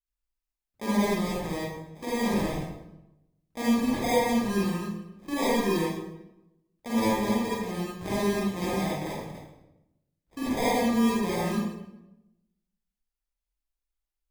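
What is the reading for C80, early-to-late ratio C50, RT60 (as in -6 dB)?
1.5 dB, -4.0 dB, 0.90 s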